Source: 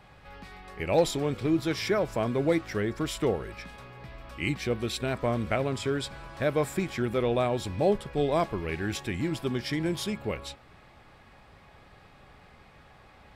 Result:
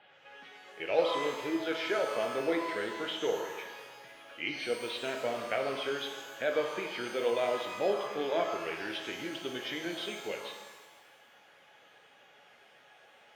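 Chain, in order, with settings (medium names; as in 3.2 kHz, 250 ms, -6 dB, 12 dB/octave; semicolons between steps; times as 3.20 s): coarse spectral quantiser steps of 15 dB; cabinet simulation 420–3700 Hz, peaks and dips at 470 Hz +3 dB, 1.1 kHz -8 dB, 1.5 kHz +5 dB, 3.1 kHz +8 dB; pitch-shifted reverb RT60 1.3 s, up +12 st, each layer -8 dB, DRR 3.5 dB; trim -4 dB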